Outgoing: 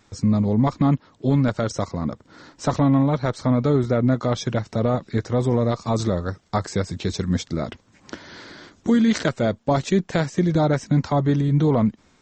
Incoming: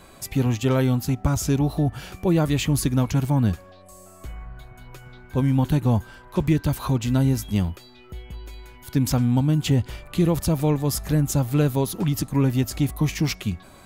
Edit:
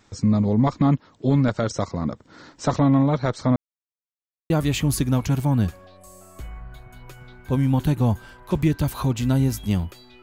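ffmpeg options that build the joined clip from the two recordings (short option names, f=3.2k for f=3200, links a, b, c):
-filter_complex "[0:a]apad=whole_dur=10.22,atrim=end=10.22,asplit=2[a][b];[a]atrim=end=3.56,asetpts=PTS-STARTPTS,afade=t=out:st=3.556:d=0.004:c=hsin[c];[b]atrim=start=3.56:end=4.5,asetpts=PTS-STARTPTS,volume=0[d];[1:a]atrim=start=2.35:end=8.07,asetpts=PTS-STARTPTS,afade=t=in:d=0.004:c=hsin[e];[c][d][e]concat=n=3:v=0:a=1"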